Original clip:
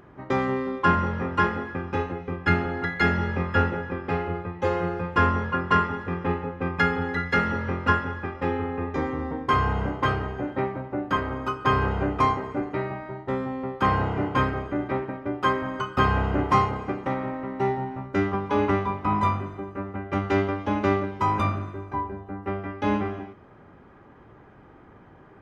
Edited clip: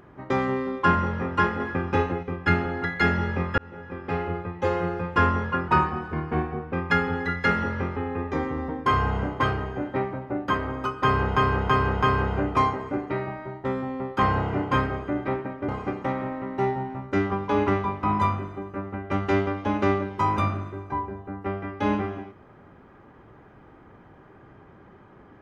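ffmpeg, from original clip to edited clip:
-filter_complex "[0:a]asplit=11[a][b][c][d][e][f][g][h][i][j][k];[a]atrim=end=1.602[l];[b]atrim=start=1.598:end=2.232,asetpts=PTS-STARTPTS,volume=4dB[m];[c]atrim=start=2.228:end=3.58,asetpts=PTS-STARTPTS,afade=t=out:st=1.348:d=0.004:c=hsin[n];[d]atrim=start=3.58:end=5.684,asetpts=PTS-STARTPTS,afade=t=in:d=0.65[o];[e]atrim=start=5.68:end=6.61,asetpts=PTS-STARTPTS,asetrate=39249,aresample=44100,atrim=end_sample=46082,asetpts=PTS-STARTPTS[p];[f]atrim=start=6.606:end=7.852[q];[g]atrim=start=8.588:end=11.992[r];[h]atrim=start=11.658:end=11.992[s];[i]atrim=start=11.658:end=11.992[t];[j]atrim=start=11.658:end=15.322[u];[k]atrim=start=16.698[v];[l][m]acrossfade=d=0.004:c1=hsin:c2=hsin[w];[n][o]concat=n=2:v=0:a=1[x];[w][x]acrossfade=d=0.004:c1=hsin:c2=hsin[y];[y][p]acrossfade=d=0.004:c1=hsin:c2=hsin[z];[z][q]acrossfade=d=0.004:c1=hsin:c2=hsin[aa];[aa][r]acrossfade=d=0.004:c1=hsin:c2=hsin[ab];[ab][s]acrossfade=d=0.004:c1=hsin:c2=hsin[ac];[ac][t]acrossfade=d=0.004:c1=hsin:c2=hsin[ad];[ad][u]acrossfade=d=0.004:c1=hsin:c2=hsin[ae];[ae][v]acrossfade=d=0.004:c1=hsin:c2=hsin"

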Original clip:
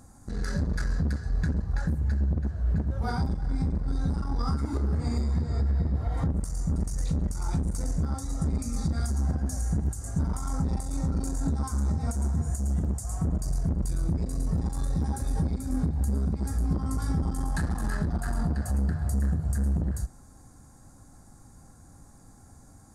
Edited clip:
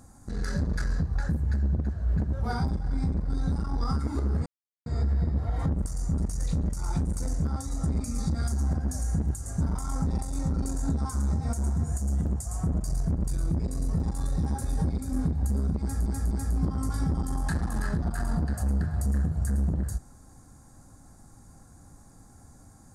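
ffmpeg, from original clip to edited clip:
-filter_complex "[0:a]asplit=6[a][b][c][d][e][f];[a]atrim=end=1.052[g];[b]atrim=start=1.628:end=5.04,asetpts=PTS-STARTPTS,afade=t=out:st=3.408:d=0.004:c=hsin[h];[c]atrim=start=5.04:end=5.44,asetpts=PTS-STARTPTS,volume=0[i];[d]atrim=start=5.44:end=16.642,asetpts=PTS-STARTPTS,afade=t=in:d=0.004:c=hsin[j];[e]atrim=start=16.388:end=16.642[k];[f]atrim=start=16.388[l];[h][i][j]concat=n=3:v=0:a=1[m];[g][m]acrossfade=d=0.004:c1=hsin:c2=hsin[n];[n][k]acrossfade=d=0.004:c1=hsin:c2=hsin[o];[o][l]acrossfade=d=0.004:c1=hsin:c2=hsin"

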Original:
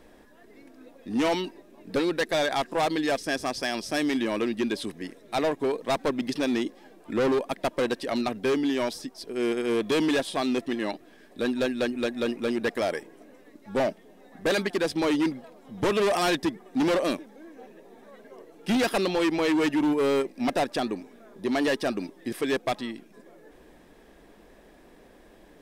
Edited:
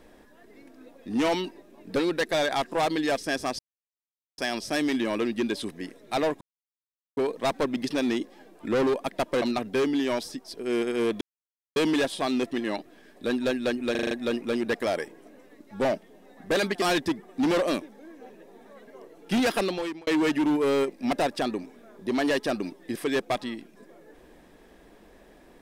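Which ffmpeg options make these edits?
-filter_complex "[0:a]asplit=12[a][b][c][d][e][f][g][h][i][j][k][l];[a]atrim=end=3.59,asetpts=PTS-STARTPTS,afade=t=out:st=3.586:d=0.004:c=hsin,apad=pad_dur=0.79[m];[b]atrim=start=3.59:end=5.62,asetpts=PTS-STARTPTS,afade=t=in:d=0.004:c=hsin,afade=t=out:st=2.026:d=0.004:c=hsin,apad=pad_dur=0.76[n];[c]atrim=start=5.62:end=7.872,asetpts=PTS-STARTPTS,afade=t=in:d=0.004:c=hsin[o];[d]atrim=start=8.118:end=9.91,asetpts=PTS-STARTPTS,afade=t=out:st=1.788:d=0.004:c=hsin,apad=pad_dur=0.55[p];[e]atrim=start=9.91:end=12.102,asetpts=PTS-STARTPTS,afade=t=in:d=0.004:c=hsin[q];[f]atrim=start=12.058:end=12.102[r];[g]atrim=start=12.058:end=12.102[s];[h]atrim=start=12.058:end=12.102[t];[i]atrim=start=12.058:end=12.102[u];[j]atrim=start=12.058:end=14.772[v];[k]atrim=start=16.188:end=19.44,asetpts=PTS-STARTPTS,afade=t=out:st=2.752:d=0.5[w];[l]atrim=start=19.44,asetpts=PTS-STARTPTS,afade=t=in:d=0.004:c=hsin[x];[m][n][o]concat=n=3:v=0:a=1[y];[p][q]concat=n=2:v=0:a=1[z];[y][z]acrossfade=d=0.004:c1=hsin:c2=hsin[aa];[aa][r]acrossfade=d=0.004:c1=hsin:c2=hsin[ab];[ab][s]acrossfade=d=0.004:c1=hsin:c2=hsin[ac];[ac][t]acrossfade=d=0.004:c1=hsin:c2=hsin[ad];[ad][u]acrossfade=d=0.004:c1=hsin:c2=hsin[ae];[ae][v]acrossfade=d=0.004:c1=hsin:c2=hsin[af];[w][x]concat=n=2:v=0:a=1[ag];[af][ag]acrossfade=d=0.004:c1=hsin:c2=hsin"

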